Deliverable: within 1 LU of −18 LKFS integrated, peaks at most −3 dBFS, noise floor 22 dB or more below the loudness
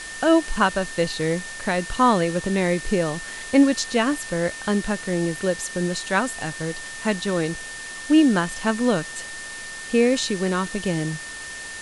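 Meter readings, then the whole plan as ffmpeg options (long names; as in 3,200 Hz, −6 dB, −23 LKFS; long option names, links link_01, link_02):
interfering tone 1,800 Hz; level of the tone −35 dBFS; background noise floor −35 dBFS; target noise floor −45 dBFS; integrated loudness −23.0 LKFS; sample peak −5.5 dBFS; target loudness −18.0 LKFS
→ -af "bandreject=frequency=1800:width=30"
-af "afftdn=noise_reduction=10:noise_floor=-35"
-af "volume=5dB,alimiter=limit=-3dB:level=0:latency=1"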